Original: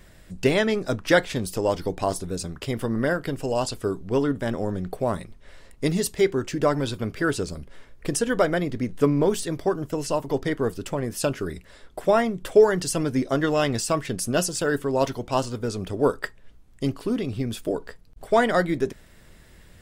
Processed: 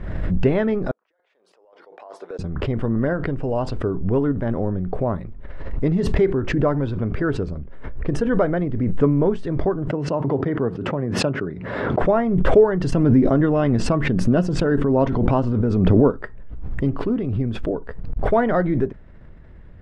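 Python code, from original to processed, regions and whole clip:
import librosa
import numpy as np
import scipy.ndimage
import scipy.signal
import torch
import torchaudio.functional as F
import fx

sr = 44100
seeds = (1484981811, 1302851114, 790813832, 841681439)

y = fx.chain(x, sr, fx.highpass(hz=500.0, slope=24),
    fx.over_compress(threshold_db=-28.0, ratio=-0.5),
    fx.gate_flip(shuts_db=-31.0, range_db=-37), at=(0.91, 2.39))
y = fx.chain(y, sr, fx.highpass(hz=110.0, slope=24),
    fx.high_shelf(hz=4700.0, db=-8.0), at=(9.88, 12.02))
y = fx.chain(y, sr, fx.peak_eq(hz=220.0, db=5.5, octaves=1.1),
    fx.pre_swell(db_per_s=29.0), at=(12.92, 16.24))
y = scipy.signal.sosfilt(scipy.signal.butter(2, 1500.0, 'lowpass', fs=sr, output='sos'), y)
y = fx.low_shelf(y, sr, hz=210.0, db=7.5)
y = fx.pre_swell(y, sr, db_per_s=36.0)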